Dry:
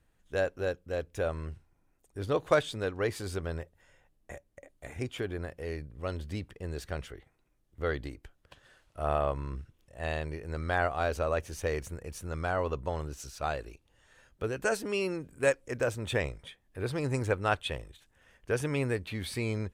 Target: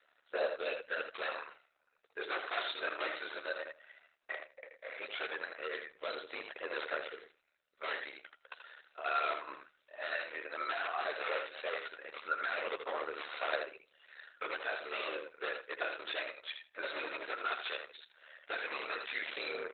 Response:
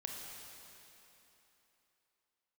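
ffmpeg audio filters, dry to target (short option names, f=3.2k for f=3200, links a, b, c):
-filter_complex "[0:a]aemphasis=mode=production:type=riaa,asettb=1/sr,asplit=3[a][b][c];[a]atrim=end=12.674[d];[b]atrim=start=12.67:end=13.38,asetpts=PTS-STARTPTS,afade=t=in:d=0.004:c=qsin,afade=t=out:st=0.706:d=0.004:c=qsin,acompressor=mode=upward:threshold=-37dB:ratio=2.5[e];[c]atrim=start=13.376[f];[d][e]acrossfade=d=0.004:c1=hsin:c2=qsin[g];[g][f]acrossfade=d=0.004:c1=qsin:c2=hsin,asplit=3[h][i][j];[h]afade=t=out:st=16.82:d=0.02[k];[i]bandreject=f=870:w=18,afade=t=in:st=16.82:d=0.02,afade=t=out:st=17.78:d=0.02[l];[j]afade=t=in:st=17.78:d=0.02[m];[k][l][m]amix=inputs=3:normalize=0,alimiter=limit=-20.5dB:level=0:latency=1:release=423,asplit=3[n][o][p];[n]afade=t=out:st=8.14:d=0.02[q];[o]acompressor=threshold=-51dB:ratio=2,afade=t=in:st=8.14:d=0.02,afade=t=out:st=9.04:d=0.02[r];[p]afade=t=in:st=9.04:d=0.02[s];[q][r][s]amix=inputs=3:normalize=0,aeval=exprs='val(0)*sin(2*PI*37*n/s)':c=same,aeval=exprs='0.0158*(abs(mod(val(0)/0.0158+3,4)-2)-1)':c=same,aphaser=in_gain=1:out_gain=1:delay=3.3:decay=0.43:speed=0.15:type=sinusoidal,highpass=f=480:w=0.5412,highpass=f=480:w=1.3066,equalizer=f=860:t=q:w=4:g=-7,equalizer=f=1.4k:t=q:w=4:g=6,equalizer=f=3.2k:t=q:w=4:g=-5,lowpass=f=5.3k:w=0.5412,lowpass=f=5.3k:w=1.3066,asplit=2[t][u];[u]adelay=13,volume=-9.5dB[v];[t][v]amix=inputs=2:normalize=0,aecho=1:1:80|160|240:0.501|0.0852|0.0145,volume=9dB" -ar 48000 -c:a libopus -b:a 8k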